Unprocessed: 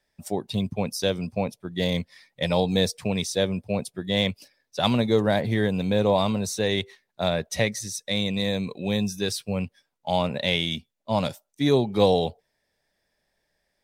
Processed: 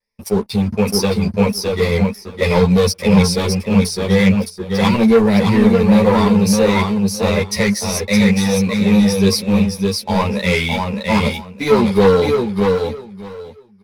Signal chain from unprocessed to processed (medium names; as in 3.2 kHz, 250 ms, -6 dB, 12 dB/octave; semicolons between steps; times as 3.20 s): rippled EQ curve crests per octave 0.87, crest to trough 13 dB; waveshaping leveller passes 3; vibrato 1.4 Hz 46 cents; feedback delay 614 ms, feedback 18%, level -4 dB; three-phase chorus